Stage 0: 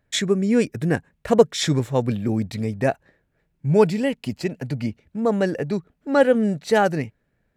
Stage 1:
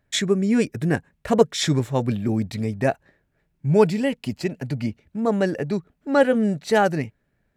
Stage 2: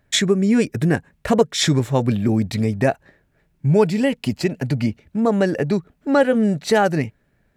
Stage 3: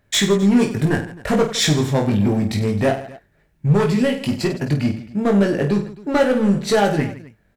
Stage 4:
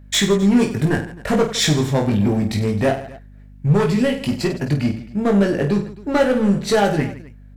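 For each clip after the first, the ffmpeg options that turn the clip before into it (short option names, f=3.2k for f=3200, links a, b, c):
-af "bandreject=f=490:w=12"
-af "acompressor=threshold=-22dB:ratio=2,volume=6.5dB"
-filter_complex "[0:a]asoftclip=type=hard:threshold=-13.5dB,asplit=2[a][b];[b]aecho=0:1:20|50|95|162.5|263.8:0.631|0.398|0.251|0.158|0.1[c];[a][c]amix=inputs=2:normalize=0"
-af "aeval=exprs='val(0)+0.00891*(sin(2*PI*50*n/s)+sin(2*PI*2*50*n/s)/2+sin(2*PI*3*50*n/s)/3+sin(2*PI*4*50*n/s)/4+sin(2*PI*5*50*n/s)/5)':c=same"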